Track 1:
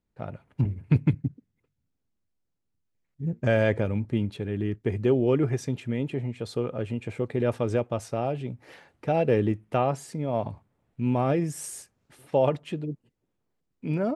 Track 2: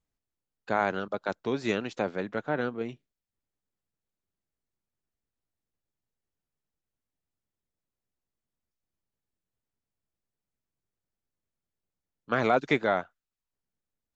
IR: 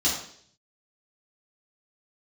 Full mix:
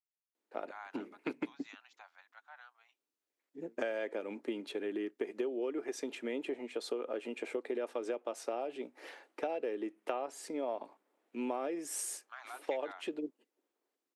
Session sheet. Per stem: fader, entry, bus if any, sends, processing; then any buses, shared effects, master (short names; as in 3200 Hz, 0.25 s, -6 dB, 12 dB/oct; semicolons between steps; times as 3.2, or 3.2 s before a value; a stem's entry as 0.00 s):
-0.5 dB, 0.35 s, no send, steep high-pass 290 Hz 36 dB/oct; compressor 12:1, threshold -32 dBFS, peak gain reduction 15 dB
-19.0 dB, 0.00 s, no send, steep high-pass 760 Hz 48 dB/oct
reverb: off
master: dry